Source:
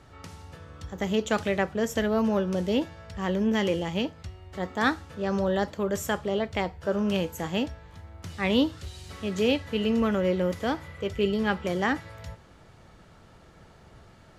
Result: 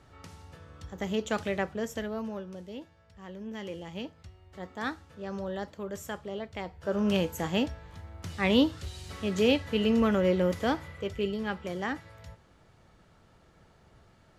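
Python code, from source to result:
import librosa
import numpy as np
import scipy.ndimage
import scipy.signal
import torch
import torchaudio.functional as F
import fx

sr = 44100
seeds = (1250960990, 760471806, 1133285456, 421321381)

y = fx.gain(x, sr, db=fx.line((1.68, -4.5), (2.68, -16.5), (3.33, -16.5), (4.05, -9.5), (6.6, -9.5), (7.07, 0.0), (10.72, 0.0), (11.41, -7.0)))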